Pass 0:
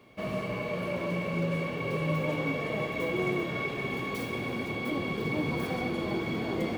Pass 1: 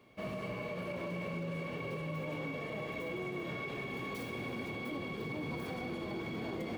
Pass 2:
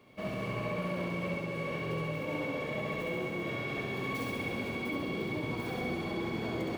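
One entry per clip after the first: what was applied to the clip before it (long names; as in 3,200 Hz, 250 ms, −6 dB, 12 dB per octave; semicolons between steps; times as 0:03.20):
brickwall limiter −25.5 dBFS, peak gain reduction 7.5 dB; level −5.5 dB
flutter between parallel walls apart 11.6 metres, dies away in 1.2 s; level +2 dB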